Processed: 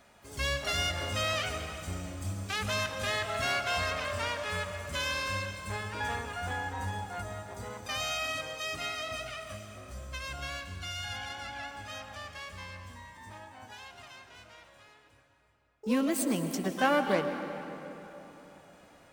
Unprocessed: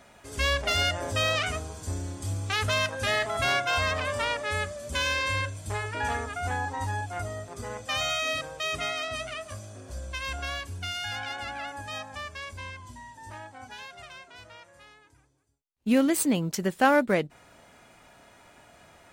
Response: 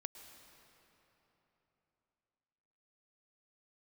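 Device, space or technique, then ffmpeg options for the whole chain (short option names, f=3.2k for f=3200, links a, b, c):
shimmer-style reverb: -filter_complex "[0:a]asettb=1/sr,asplit=3[a][b][c];[a]atrim=end=10.624[d];[b]atrim=start=10.62:end=12.38,asetpts=PTS-STARTPTS,afade=t=in:d=0.004:c=qsin,afade=t=out:st=1.756:d=0.004:c=qsin,lowpass=f=8.7k:w=0.5412,lowpass=f=8.7k:w=1.3066[e];[c]atrim=start=12.376[f];[d][e]acrossfade=d=0.004:c1=hsin:c2=qsin[g];[g][f]acrossfade=d=0.004:c1=qsin:c2=hsin,asplit=2[h][i];[i]asetrate=88200,aresample=44100,atempo=0.5,volume=-10dB[j];[h][j]amix=inputs=2:normalize=0[k];[1:a]atrim=start_sample=2205[l];[k][l]afir=irnorm=-1:irlink=0,volume=-1.5dB"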